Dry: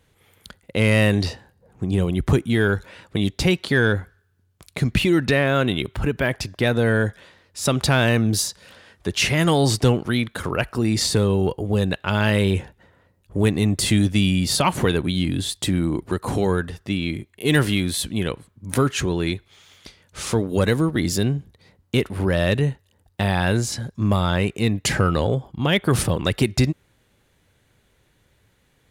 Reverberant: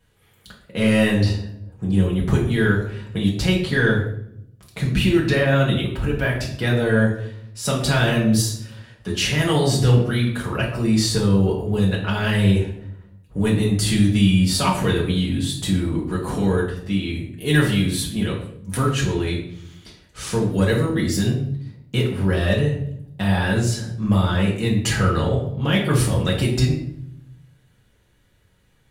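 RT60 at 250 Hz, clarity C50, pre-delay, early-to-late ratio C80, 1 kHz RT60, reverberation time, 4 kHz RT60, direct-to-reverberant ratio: 1.1 s, 6.0 dB, 4 ms, 9.0 dB, 0.60 s, 0.70 s, 0.50 s, −5.0 dB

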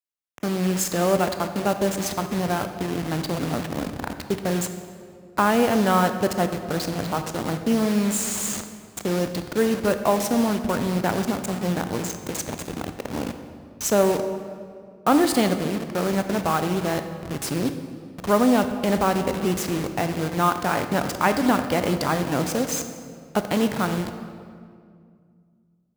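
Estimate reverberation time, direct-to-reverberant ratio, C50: 2.2 s, 8.0 dB, 9.0 dB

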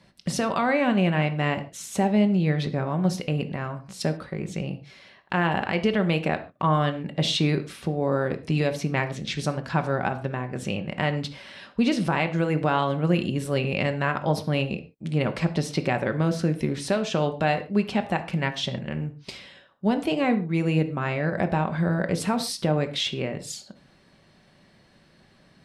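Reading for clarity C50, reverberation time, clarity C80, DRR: 13.0 dB, non-exponential decay, 17.5 dB, 7.0 dB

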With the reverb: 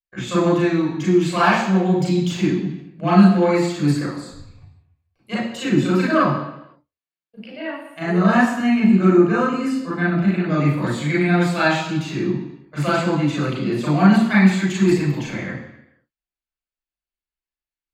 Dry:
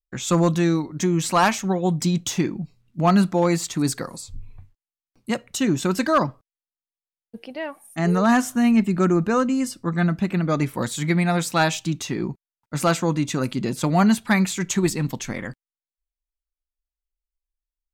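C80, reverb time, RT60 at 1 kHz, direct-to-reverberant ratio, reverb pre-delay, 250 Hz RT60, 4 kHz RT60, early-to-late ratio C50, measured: 5.5 dB, 0.85 s, 0.85 s, −7.0 dB, 32 ms, 0.80 s, 0.90 s, 2.0 dB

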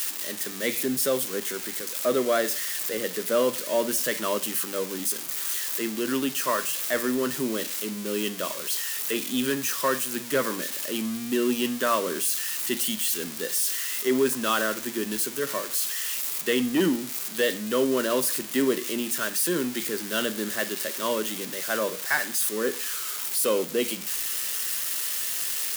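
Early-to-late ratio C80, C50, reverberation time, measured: 20.5 dB, 16.0 dB, 0.50 s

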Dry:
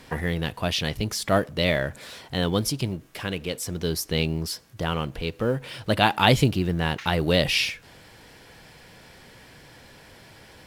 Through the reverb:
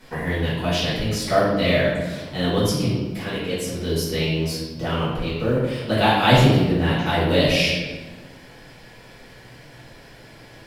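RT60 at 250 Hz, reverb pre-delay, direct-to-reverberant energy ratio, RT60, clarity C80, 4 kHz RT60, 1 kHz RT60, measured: 1.9 s, 5 ms, −10.5 dB, 1.3 s, 3.0 dB, 0.90 s, 1.2 s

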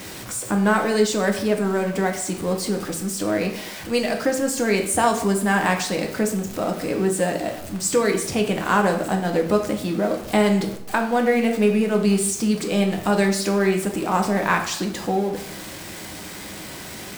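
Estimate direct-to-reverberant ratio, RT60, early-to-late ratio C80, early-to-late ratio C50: 2.5 dB, 0.70 s, 11.5 dB, 8.5 dB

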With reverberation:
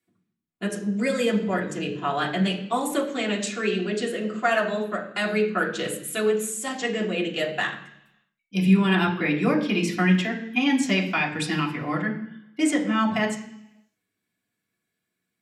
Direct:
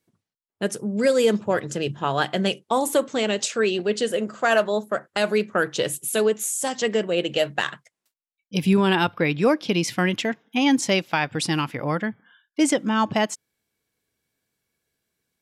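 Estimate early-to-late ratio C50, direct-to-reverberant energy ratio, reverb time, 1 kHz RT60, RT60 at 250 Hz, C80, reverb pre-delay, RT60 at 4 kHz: 9.5 dB, −3.0 dB, 0.70 s, 0.75 s, 0.90 s, 12.0 dB, 3 ms, 1.0 s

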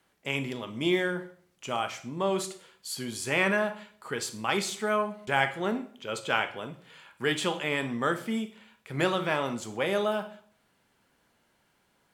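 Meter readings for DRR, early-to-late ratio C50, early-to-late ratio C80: 10.0 dB, 13.0 dB, 17.5 dB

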